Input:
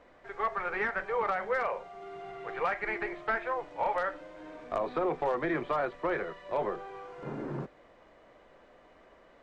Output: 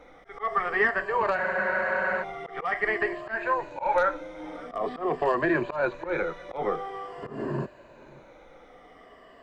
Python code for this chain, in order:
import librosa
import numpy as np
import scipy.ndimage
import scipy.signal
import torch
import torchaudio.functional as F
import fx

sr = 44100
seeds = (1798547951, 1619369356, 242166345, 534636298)

p1 = fx.spec_ripple(x, sr, per_octave=1.4, drift_hz=-0.47, depth_db=12)
p2 = fx.auto_swell(p1, sr, attack_ms=150.0)
p3 = p2 + fx.echo_single(p2, sr, ms=573, db=-23.0, dry=0)
p4 = fx.spec_freeze(p3, sr, seeds[0], at_s=1.39, hold_s=0.82)
y = p4 * 10.0 ** (5.0 / 20.0)